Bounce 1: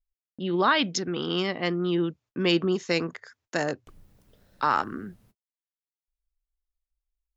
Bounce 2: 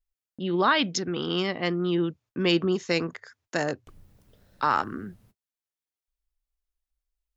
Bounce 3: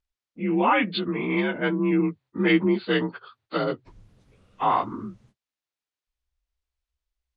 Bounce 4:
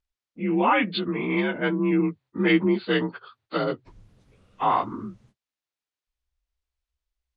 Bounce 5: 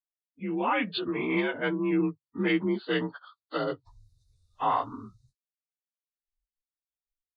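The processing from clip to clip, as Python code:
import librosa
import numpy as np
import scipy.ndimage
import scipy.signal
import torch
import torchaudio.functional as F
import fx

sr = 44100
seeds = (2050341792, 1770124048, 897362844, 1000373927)

y1 = fx.peak_eq(x, sr, hz=93.0, db=4.0, octaves=0.77)
y2 = fx.partial_stretch(y1, sr, pct=87)
y2 = scipy.signal.sosfilt(scipy.signal.butter(2, 5100.0, 'lowpass', fs=sr, output='sos'), y2)
y2 = y2 * librosa.db_to_amplitude(4.0)
y3 = y2
y4 = fx.noise_reduce_blind(y3, sr, reduce_db=26)
y4 = fx.rider(y4, sr, range_db=10, speed_s=0.5)
y4 = y4 * librosa.db_to_amplitude(-3.5)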